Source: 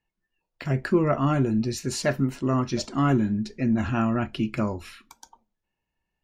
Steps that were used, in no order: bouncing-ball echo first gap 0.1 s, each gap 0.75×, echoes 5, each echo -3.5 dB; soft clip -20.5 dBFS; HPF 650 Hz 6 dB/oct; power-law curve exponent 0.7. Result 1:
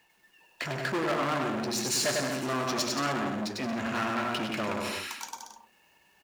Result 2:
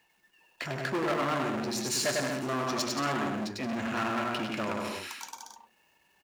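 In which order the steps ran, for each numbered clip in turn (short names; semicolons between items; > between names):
power-law curve > bouncing-ball echo > soft clip > HPF; bouncing-ball echo > soft clip > power-law curve > HPF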